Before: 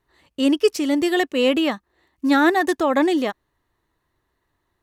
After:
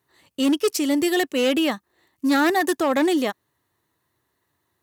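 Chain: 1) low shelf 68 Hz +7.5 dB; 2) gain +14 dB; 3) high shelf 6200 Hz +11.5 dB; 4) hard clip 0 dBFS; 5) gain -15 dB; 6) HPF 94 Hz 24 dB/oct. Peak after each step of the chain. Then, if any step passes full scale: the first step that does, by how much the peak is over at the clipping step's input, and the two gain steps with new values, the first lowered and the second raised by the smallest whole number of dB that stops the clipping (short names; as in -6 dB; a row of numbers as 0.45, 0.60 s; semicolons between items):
-6.5, +7.5, +8.5, 0.0, -15.0, -10.0 dBFS; step 2, 8.5 dB; step 2 +5 dB, step 5 -6 dB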